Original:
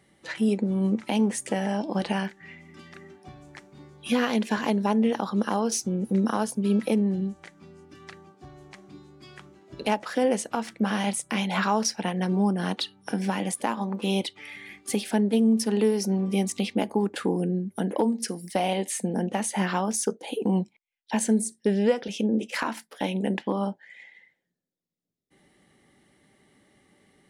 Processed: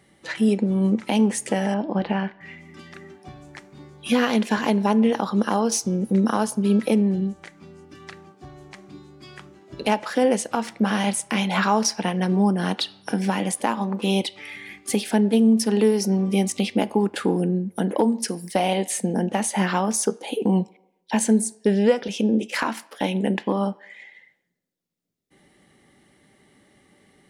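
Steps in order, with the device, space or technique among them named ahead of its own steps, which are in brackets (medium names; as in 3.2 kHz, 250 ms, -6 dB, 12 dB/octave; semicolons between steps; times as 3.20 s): filtered reverb send (on a send: high-pass 550 Hz 12 dB/octave + low-pass 6.4 kHz + reverberation RT60 0.85 s, pre-delay 8 ms, DRR 18 dB); 1.74–2.41 s: on the sum: distance through air 330 m; trim +4 dB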